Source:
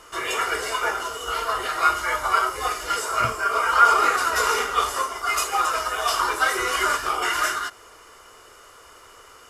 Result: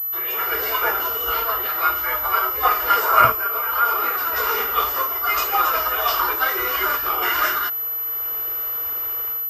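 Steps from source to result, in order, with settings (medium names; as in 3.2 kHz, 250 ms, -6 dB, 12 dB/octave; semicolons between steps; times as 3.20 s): level rider gain up to 15.5 dB; 2.63–3.32 s: peaking EQ 1 kHz +8.5 dB 2.1 oct; class-D stage that switches slowly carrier 12 kHz; trim -6.5 dB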